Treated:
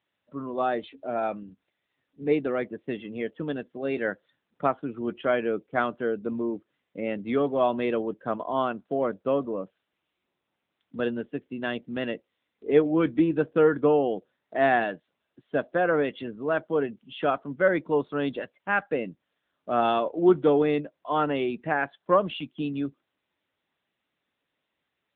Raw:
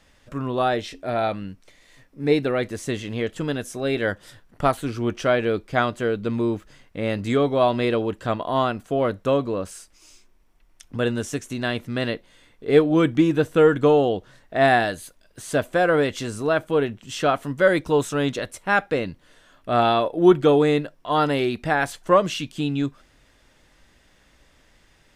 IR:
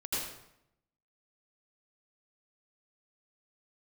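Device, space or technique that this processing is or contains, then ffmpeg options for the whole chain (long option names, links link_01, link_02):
mobile call with aggressive noise cancelling: -filter_complex "[0:a]asettb=1/sr,asplit=3[link_01][link_02][link_03];[link_01]atrim=end=18.424[link_04];[link_02]atrim=start=18.42:end=18.9,asetpts=PTS-STARTPTS,afade=type=in:duration=0.004:curve=qsin,afade=type=out:start_time=0.476:duration=0.004:curve=qsin,equalizer=frequency=420:width=0.88:gain=-3.5[link_05];[link_03]atrim=start=18.896[link_06];[link_04][link_05]acrossfade=duration=0.004:curve1=hsin:curve2=qsin[link_07];[link_07][link_06]acrossfade=duration=0.004:curve1=qsin:curve2=hsin,highpass=frequency=160:width=0.5412,highpass=frequency=160:width=1.3066,afftdn=noise_reduction=18:noise_floor=-35,volume=-4dB" -ar 8000 -c:a libopencore_amrnb -b:a 10200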